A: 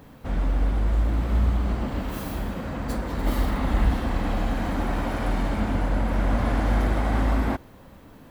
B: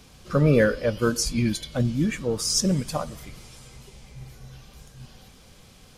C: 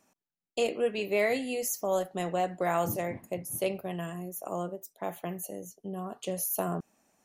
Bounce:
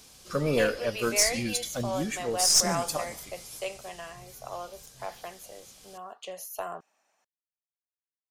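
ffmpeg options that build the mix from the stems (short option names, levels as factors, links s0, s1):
-filter_complex "[1:a]bass=f=250:g=-8,treble=f=4000:g=10,volume=0.668,asplit=2[s0][s1];[s1]volume=0.0631[s2];[2:a]acrossover=split=550 6200:gain=0.0794 1 0.251[s3][s4][s5];[s3][s4][s5]amix=inputs=3:normalize=0,volume=1.19[s6];[s2]aecho=0:1:146:1[s7];[s0][s6][s7]amix=inputs=3:normalize=0,aeval=exprs='(tanh(3.55*val(0)+0.3)-tanh(0.3))/3.55':c=same"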